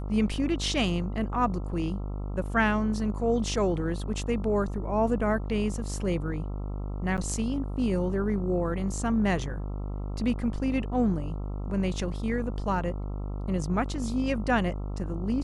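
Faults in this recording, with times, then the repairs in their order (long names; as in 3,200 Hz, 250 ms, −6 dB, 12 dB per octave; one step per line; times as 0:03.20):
mains buzz 50 Hz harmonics 27 −33 dBFS
0:07.17–0:07.18: drop-out 8.1 ms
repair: hum removal 50 Hz, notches 27
repair the gap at 0:07.17, 8.1 ms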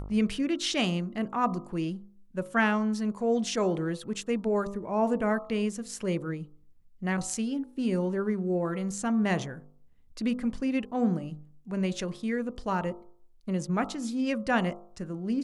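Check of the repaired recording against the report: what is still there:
none of them is left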